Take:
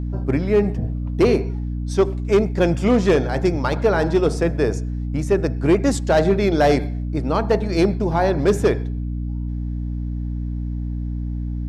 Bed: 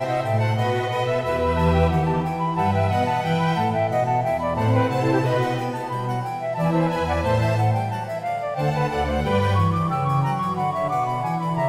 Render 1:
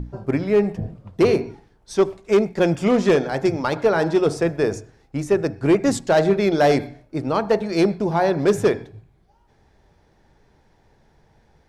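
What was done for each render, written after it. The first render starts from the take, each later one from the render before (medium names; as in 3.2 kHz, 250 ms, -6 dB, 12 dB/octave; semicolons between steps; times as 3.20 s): hum notches 60/120/180/240/300 Hz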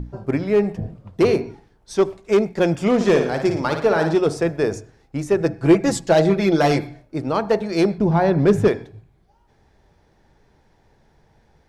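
2.95–4.15 s: flutter echo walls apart 9.7 m, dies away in 0.51 s; 5.40–7.01 s: comb 6 ms, depth 63%; 7.98–8.68 s: tone controls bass +9 dB, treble -7 dB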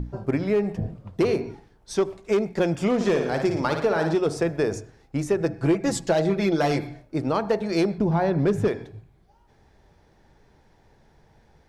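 compression 3:1, threshold -20 dBFS, peak gain reduction 9 dB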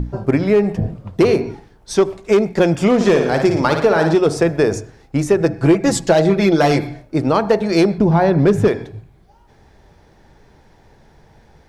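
trim +8.5 dB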